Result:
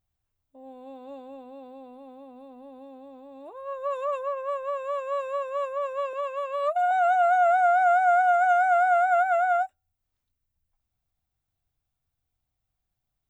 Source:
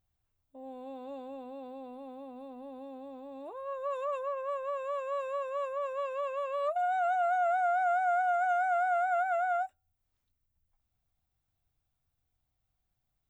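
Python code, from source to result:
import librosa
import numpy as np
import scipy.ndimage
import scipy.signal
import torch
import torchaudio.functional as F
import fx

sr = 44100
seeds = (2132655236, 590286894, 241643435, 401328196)

y = fx.highpass(x, sr, hz=440.0, slope=12, at=(6.13, 6.91))
y = fx.upward_expand(y, sr, threshold_db=-45.0, expansion=1.5)
y = y * 10.0 ** (8.5 / 20.0)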